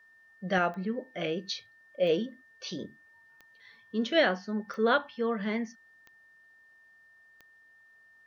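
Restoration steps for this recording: de-click; band-stop 1.8 kHz, Q 30

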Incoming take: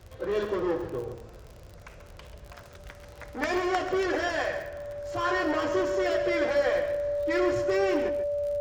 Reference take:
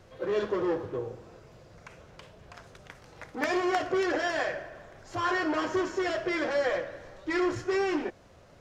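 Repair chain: de-click; band-stop 580 Hz, Q 30; noise print and reduce 6 dB; inverse comb 137 ms -10 dB

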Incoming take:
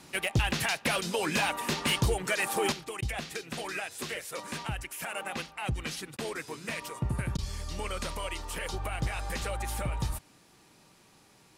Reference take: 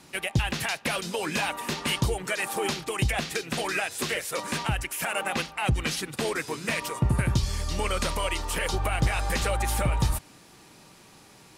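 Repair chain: clip repair -20 dBFS; interpolate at 3.01/6.17/7.37 s, 13 ms; trim 0 dB, from 2.72 s +7.5 dB

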